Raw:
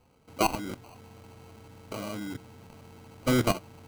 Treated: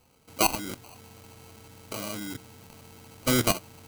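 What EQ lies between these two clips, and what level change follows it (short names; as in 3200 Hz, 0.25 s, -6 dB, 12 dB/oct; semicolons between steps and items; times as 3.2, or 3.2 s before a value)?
high shelf 2200 Hz +7.5 dB; high shelf 6900 Hz +5 dB; -1.0 dB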